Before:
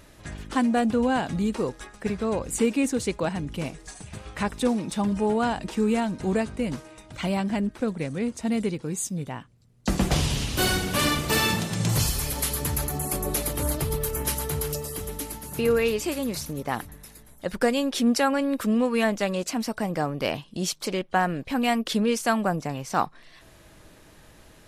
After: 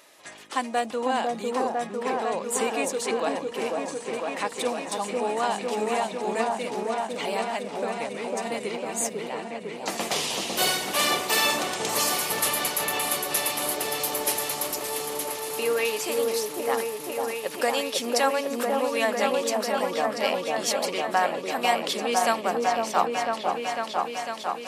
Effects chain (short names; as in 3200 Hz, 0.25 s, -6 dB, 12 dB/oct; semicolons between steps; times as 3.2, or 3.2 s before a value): HPF 580 Hz 12 dB/oct; bell 1500 Hz -6 dB 0.31 oct; on a send: repeats that get brighter 0.501 s, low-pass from 750 Hz, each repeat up 1 oct, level 0 dB; on the sum: gain +2 dB